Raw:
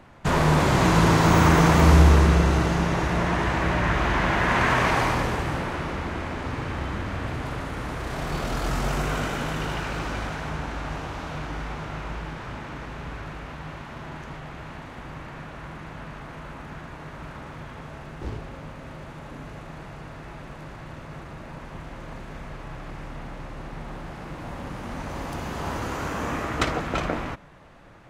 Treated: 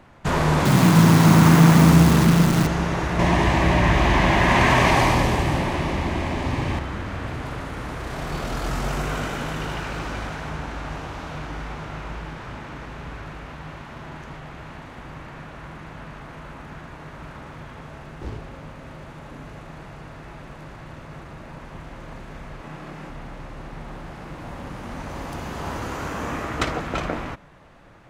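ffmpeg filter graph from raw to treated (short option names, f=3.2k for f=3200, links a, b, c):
-filter_complex "[0:a]asettb=1/sr,asplit=3[a][b][c];[a]atrim=end=0.654[d];[b]atrim=start=0.65:end=2.67,asetpts=PTS-STARTPTS,afade=t=in:d=0.004:c=qsin,afade=t=out:st=2.016:d=0.004:c=qsin,highpass=f=120:w=0.5412,highpass=f=120:w=1.3066,acrusher=bits=5:dc=4:mix=0:aa=0.000001,lowshelf=f=300:t=q:w=1.5:g=6.5[e];[c]atrim=start=2.666[f];[d][e]acrossfade=d=0.004:c1=hsin:c2=qsin[g];[g][f]acrossfade=d=0.004:c1=qsin:c2=hsin,asettb=1/sr,asplit=3[h][i][j];[h]atrim=end=3.194[k];[i]atrim=start=3.19:end=6.79,asetpts=PTS-STARTPTS,afade=t=in:d=0.004:c=qsin,afade=t=out:st=3.596:d=0.004:c=qsin,equalizer=f=1.4k:w=4.5:g=-13,bandreject=f=470:w=7.3,acontrast=62[l];[j]atrim=start=6.786[m];[k][l]acrossfade=d=0.004:c1=hsin:c2=qsin[n];[n][m]acrossfade=d=0.004:c1=qsin:c2=hsin,asettb=1/sr,asplit=3[o][p][q];[o]atrim=end=22.614[r];[p]atrim=start=22.61:end=23.1,asetpts=PTS-STARTPTS,afade=t=in:d=0.004:c=qsin,afade=t=out:st=0.486:d=0.004:c=qsin,lowshelf=f=120:t=q:w=1.5:g=-12,asplit=2[s][t];[t]adelay=26,volume=-4dB[u];[s][u]amix=inputs=2:normalize=0,atrim=end_sample=21609[v];[q]atrim=start=23.096[w];[r][v]acrossfade=d=0.004:c1=hsin:c2=qsin[x];[x][w]acrossfade=d=0.004:c1=qsin:c2=hsin"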